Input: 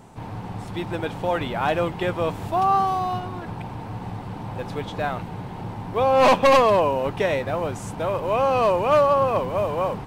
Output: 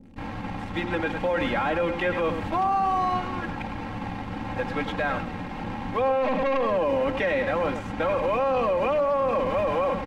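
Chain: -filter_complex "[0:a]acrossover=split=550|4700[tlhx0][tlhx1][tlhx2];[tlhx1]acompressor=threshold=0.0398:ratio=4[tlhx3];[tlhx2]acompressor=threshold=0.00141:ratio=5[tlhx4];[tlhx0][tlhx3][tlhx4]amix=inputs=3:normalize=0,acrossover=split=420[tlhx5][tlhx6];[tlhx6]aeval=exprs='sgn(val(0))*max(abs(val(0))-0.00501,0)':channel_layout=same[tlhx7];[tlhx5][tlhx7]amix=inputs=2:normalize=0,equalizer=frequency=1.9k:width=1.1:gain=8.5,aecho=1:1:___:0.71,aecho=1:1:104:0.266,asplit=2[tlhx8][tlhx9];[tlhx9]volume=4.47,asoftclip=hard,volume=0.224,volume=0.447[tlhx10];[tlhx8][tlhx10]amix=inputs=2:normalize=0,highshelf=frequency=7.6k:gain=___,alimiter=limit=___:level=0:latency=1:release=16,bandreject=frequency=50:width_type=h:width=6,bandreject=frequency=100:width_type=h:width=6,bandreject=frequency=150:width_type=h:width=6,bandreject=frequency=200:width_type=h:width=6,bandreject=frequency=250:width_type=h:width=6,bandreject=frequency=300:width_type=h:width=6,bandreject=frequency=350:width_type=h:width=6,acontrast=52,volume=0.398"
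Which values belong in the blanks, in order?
3.7, -12, 0.188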